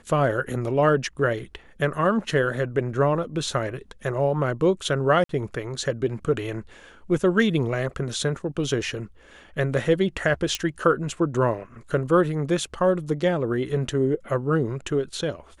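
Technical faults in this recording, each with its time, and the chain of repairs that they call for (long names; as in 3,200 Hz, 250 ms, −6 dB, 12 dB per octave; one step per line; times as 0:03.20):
0:05.24–0:05.29: drop-out 53 ms
0:10.55: click −10 dBFS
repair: click removal
repair the gap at 0:05.24, 53 ms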